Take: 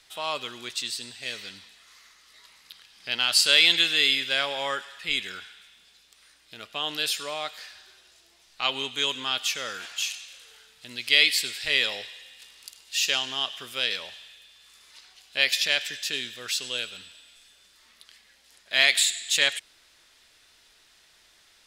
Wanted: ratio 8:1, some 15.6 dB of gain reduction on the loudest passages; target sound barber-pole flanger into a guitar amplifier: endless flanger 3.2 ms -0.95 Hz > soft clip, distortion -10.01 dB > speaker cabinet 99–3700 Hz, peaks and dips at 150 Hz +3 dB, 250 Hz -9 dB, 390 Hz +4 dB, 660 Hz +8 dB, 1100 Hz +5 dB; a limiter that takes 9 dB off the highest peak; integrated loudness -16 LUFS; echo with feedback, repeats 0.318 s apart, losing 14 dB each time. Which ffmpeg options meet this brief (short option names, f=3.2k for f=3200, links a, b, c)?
-filter_complex "[0:a]acompressor=threshold=-30dB:ratio=8,alimiter=limit=-23.5dB:level=0:latency=1,aecho=1:1:318|636:0.2|0.0399,asplit=2[a][b];[b]adelay=3.2,afreqshift=-0.95[c];[a][c]amix=inputs=2:normalize=1,asoftclip=threshold=-38.5dB,highpass=99,equalizer=f=150:t=q:w=4:g=3,equalizer=f=250:t=q:w=4:g=-9,equalizer=f=390:t=q:w=4:g=4,equalizer=f=660:t=q:w=4:g=8,equalizer=f=1.1k:t=q:w=4:g=5,lowpass=f=3.7k:w=0.5412,lowpass=f=3.7k:w=1.3066,volume=28dB"